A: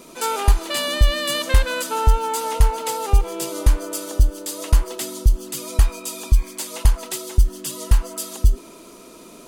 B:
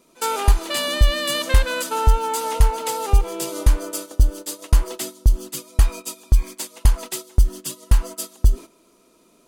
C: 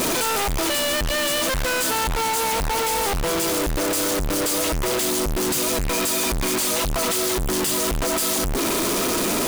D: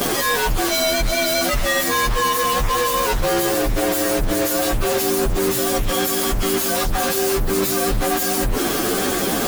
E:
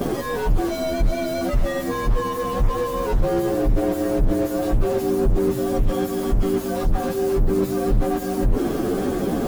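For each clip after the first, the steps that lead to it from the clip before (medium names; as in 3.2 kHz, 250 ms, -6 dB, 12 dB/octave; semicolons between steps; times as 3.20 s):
gate -29 dBFS, range -14 dB
one-bit comparator; trim -3.5 dB
frequency axis rescaled in octaves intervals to 113%; trim +6 dB
tilt shelf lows +10 dB; trim -7 dB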